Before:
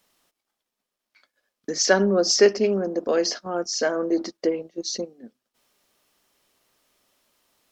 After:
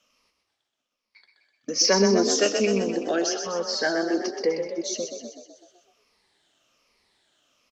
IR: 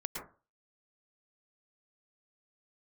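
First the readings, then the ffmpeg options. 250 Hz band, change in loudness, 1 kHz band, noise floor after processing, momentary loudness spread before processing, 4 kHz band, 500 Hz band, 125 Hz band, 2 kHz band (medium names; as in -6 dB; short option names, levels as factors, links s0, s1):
0.0 dB, -1.0 dB, 0.0 dB, -82 dBFS, 13 LU, +1.0 dB, -2.0 dB, 0.0 dB, -1.0 dB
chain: -filter_complex "[0:a]afftfilt=real='re*pow(10,13/40*sin(2*PI*(0.88*log(max(b,1)*sr/1024/100)/log(2)-(-1.2)*(pts-256)/sr)))':imag='im*pow(10,13/40*sin(2*PI*(0.88*log(max(b,1)*sr/1024/100)/log(2)-(-1.2)*(pts-256)/sr)))':win_size=1024:overlap=0.75,lowpass=5300,asplit=8[s0][s1][s2][s3][s4][s5][s6][s7];[s1]adelay=126,afreqshift=31,volume=0.447[s8];[s2]adelay=252,afreqshift=62,volume=0.254[s9];[s3]adelay=378,afreqshift=93,volume=0.145[s10];[s4]adelay=504,afreqshift=124,volume=0.0832[s11];[s5]adelay=630,afreqshift=155,volume=0.0473[s12];[s6]adelay=756,afreqshift=186,volume=0.0269[s13];[s7]adelay=882,afreqshift=217,volume=0.0153[s14];[s0][s8][s9][s10][s11][s12][s13][s14]amix=inputs=8:normalize=0,acrossover=split=200|2100[s15][s16][s17];[s17]acontrast=33[s18];[s15][s16][s18]amix=inputs=3:normalize=0,volume=0.668"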